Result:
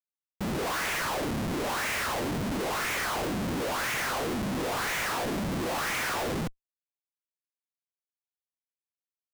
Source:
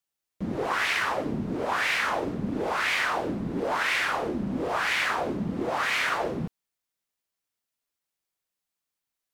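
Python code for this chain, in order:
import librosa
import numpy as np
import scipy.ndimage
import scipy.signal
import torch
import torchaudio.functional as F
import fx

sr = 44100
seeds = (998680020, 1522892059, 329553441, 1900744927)

y = scipy.signal.medfilt(x, 9)
y = fx.schmitt(y, sr, flips_db=-40.0)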